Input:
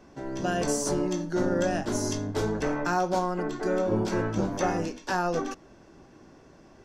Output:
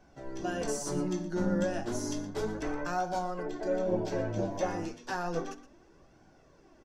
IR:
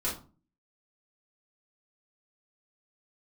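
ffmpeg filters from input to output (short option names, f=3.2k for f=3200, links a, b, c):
-filter_complex "[0:a]asettb=1/sr,asplit=3[a][b][c];[a]atrim=end=0.954[d];[b]atrim=start=0.95:end=1.64,asetpts=PTS-STARTPTS,afade=t=in:d=0.004:c=qsin,afade=t=out:st=0.686:d=0.004:c=qsin,equalizer=f=190:t=o:w=0.22:g=13.5[e];[c]atrim=start=1.636[f];[d][e]acrossfade=d=0.004:c1=hsin:c2=qsin[g];[g][f]acrossfade=d=0.004:c1=qsin:c2=hsin,aecho=1:1:119:0.188,asplit=2[h][i];[1:a]atrim=start_sample=2205[j];[i][j]afir=irnorm=-1:irlink=0,volume=-20dB[k];[h][k]amix=inputs=2:normalize=0,flanger=delay=1.3:depth=7.9:regen=34:speed=0.32:shape=sinusoidal,asettb=1/sr,asplit=3[l][m][n];[l]atrim=end=3.454[o];[m]atrim=start=3.45:end=4.65,asetpts=PTS-STARTPTS,afade=t=in:d=0.004:c=qsin,afade=t=out:st=1.196:d=0.004:c=qsin,equalizer=f=630:t=o:w=0.33:g=11,equalizer=f=1.25k:t=o:w=0.33:g=-10,equalizer=f=10k:t=o:w=0.33:g=-10[p];[n]atrim=start=4.646[q];[o][p]acrossfade=d=0.004:c1=hsin:c2=qsin[r];[r][q]acrossfade=d=0.004:c1=qsin:c2=hsin,volume=-3.5dB"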